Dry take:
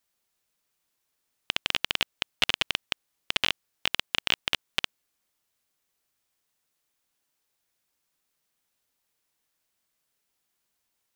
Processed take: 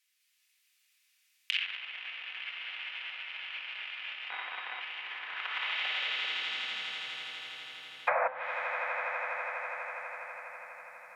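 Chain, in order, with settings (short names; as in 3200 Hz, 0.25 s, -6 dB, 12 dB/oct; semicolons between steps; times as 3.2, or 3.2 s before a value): regenerating reverse delay 0.197 s, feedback 64%, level -1 dB; shoebox room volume 1600 m³, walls mixed, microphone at 2 m; 4.3–4.81 inverted band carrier 3800 Hz; 8.07–8.28 painted sound noise 490–2600 Hz -23 dBFS; short-mantissa float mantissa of 4-bit; soft clip -5 dBFS, distortion -21 dB; high-pass sweep 2300 Hz -> 150 Hz, 5.05–7.02; limiter -12 dBFS, peak gain reduction 11 dB; on a send: swelling echo 82 ms, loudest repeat 8, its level -14.5 dB; on the sum: treble ducked by the level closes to 1000 Hz, closed at -22.5 dBFS; de-hum 128.9 Hz, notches 33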